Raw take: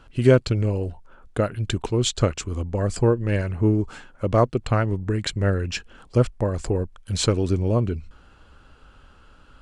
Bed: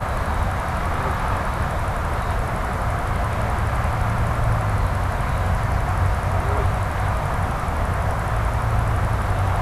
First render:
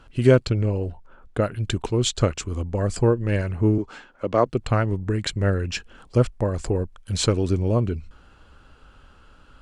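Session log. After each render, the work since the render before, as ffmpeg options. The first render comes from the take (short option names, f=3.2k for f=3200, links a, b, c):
-filter_complex "[0:a]asettb=1/sr,asplit=3[a][b][c];[a]atrim=end=0.474[d];[b]atrim=start=0.47:end=1.42,asetpts=PTS-STARTPTS,afade=t=in:d=0.004:c=qsin,afade=t=out:st=0.946:d=0.004:c=qsin,highshelf=f=5.6k:g=-8.5[e];[c]atrim=start=1.416[f];[d][e]acrossfade=d=0.004:c1=hsin:c2=qsin[g];[g][f]acrossfade=d=0.004:c1=qsin:c2=hsin,asettb=1/sr,asplit=3[h][i][j];[h]atrim=end=3.784[k];[i]atrim=start=3.78:end=4.46,asetpts=PTS-STARTPTS,afade=t=in:d=0.004:c=qsin,afade=t=out:st=0.676:d=0.004:c=qsin,acrossover=split=210 6700:gain=0.251 1 0.2[l][m][n];[l][m][n]amix=inputs=3:normalize=0[o];[j]atrim=start=4.456[p];[k][o]acrossfade=d=0.004:c1=hsin:c2=qsin[q];[q][p]acrossfade=d=0.004:c1=qsin:c2=hsin"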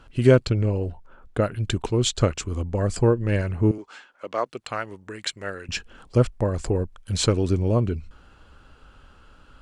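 -filter_complex "[0:a]asettb=1/sr,asplit=3[a][b][c];[a]atrim=end=3.714[d];[b]atrim=start=3.71:end=5.69,asetpts=PTS-STARTPTS,afade=t=in:d=0.004:c=qsin,afade=t=out:st=1.976:d=0.004:c=qsin,highpass=f=1.2k:p=1[e];[c]atrim=start=5.686[f];[d][e]acrossfade=d=0.004:c1=hsin:c2=qsin[g];[g][f]acrossfade=d=0.004:c1=qsin:c2=hsin"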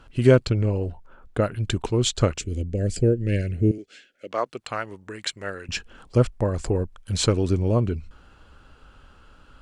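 -filter_complex "[0:a]asettb=1/sr,asplit=3[a][b][c];[a]atrim=end=2.384[d];[b]atrim=start=2.38:end=4.31,asetpts=PTS-STARTPTS,afade=t=in:d=0.004:c=qsin,afade=t=out:st=1.926:d=0.004:c=qsin,asuperstop=centerf=1000:order=4:qfactor=0.72[e];[c]atrim=start=4.306[f];[d][e]acrossfade=d=0.004:c1=hsin:c2=qsin[g];[g][f]acrossfade=d=0.004:c1=qsin:c2=hsin"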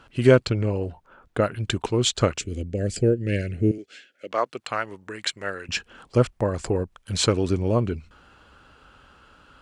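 -af "highpass=f=100:p=1,equalizer=f=1.8k:t=o:w=3:g=3"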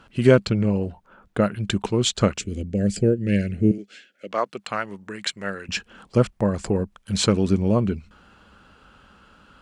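-af "equalizer=f=200:w=5.1:g=11.5"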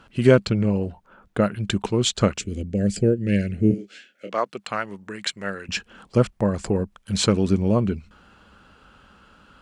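-filter_complex "[0:a]asettb=1/sr,asplit=3[a][b][c];[a]atrim=end=3.684[d];[b]atrim=start=3.68:end=4.35,asetpts=PTS-STARTPTS,afade=t=in:d=0.004:c=qsin,afade=t=out:st=0.666:d=0.004:c=qsin,asplit=2[e][f];[f]adelay=26,volume=-6dB[g];[e][g]amix=inputs=2:normalize=0,atrim=end_sample=29547[h];[c]atrim=start=4.346[i];[d][h]acrossfade=d=0.004:c1=hsin:c2=qsin[j];[j][i]acrossfade=d=0.004:c1=qsin:c2=hsin"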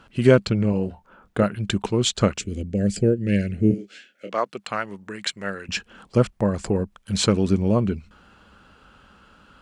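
-filter_complex "[0:a]asettb=1/sr,asplit=3[a][b][c];[a]atrim=end=0.704[d];[b]atrim=start=0.7:end=1.43,asetpts=PTS-STARTPTS,afade=t=in:d=0.004:c=qsin,afade=t=out:st=0.726:d=0.004:c=qsin,asplit=2[e][f];[f]adelay=27,volume=-8dB[g];[e][g]amix=inputs=2:normalize=0,atrim=end_sample=32193[h];[c]atrim=start=1.426[i];[d][h]acrossfade=d=0.004:c1=hsin:c2=qsin[j];[j][i]acrossfade=d=0.004:c1=qsin:c2=hsin"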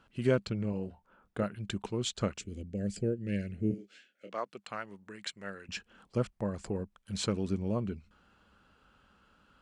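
-af "volume=-12.5dB"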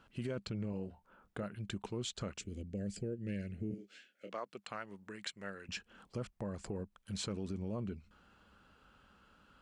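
-af "alimiter=level_in=1.5dB:limit=-24dB:level=0:latency=1:release=26,volume=-1.5dB,acompressor=threshold=-44dB:ratio=1.5"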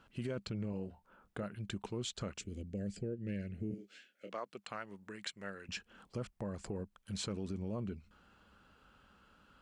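-filter_complex "[0:a]asettb=1/sr,asplit=3[a][b][c];[a]atrim=end=2.894[d];[b]atrim=start=2.89:end=3.55,asetpts=PTS-STARTPTS,afade=t=in:d=0.004:c=qsin,afade=t=out:st=0.656:d=0.004:c=qsin,highshelf=f=5.2k:g=-7.5[e];[c]atrim=start=3.546[f];[d][e]acrossfade=d=0.004:c1=hsin:c2=qsin[g];[g][f]acrossfade=d=0.004:c1=qsin:c2=hsin"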